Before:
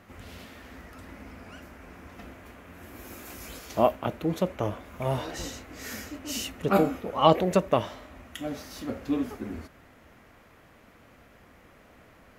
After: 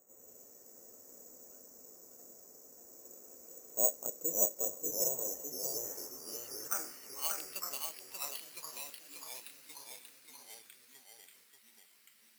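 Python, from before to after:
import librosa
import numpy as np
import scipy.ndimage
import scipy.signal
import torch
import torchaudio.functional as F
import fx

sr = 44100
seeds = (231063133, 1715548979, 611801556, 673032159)

y = fx.filter_sweep_bandpass(x, sr, from_hz=490.0, to_hz=2900.0, start_s=5.15, end_s=7.56, q=3.5)
y = (np.kron(scipy.signal.resample_poly(y, 1, 6), np.eye(6)[0]) * 6)[:len(y)]
y = fx.echo_pitch(y, sr, ms=86, semitones=-2, count=3, db_per_echo=-6.0)
y = y + 10.0 ** (-4.5 / 20.0) * np.pad(y, (int(586 * sr / 1000.0), 0))[:len(y)]
y = y * 10.0 ** (-9.0 / 20.0)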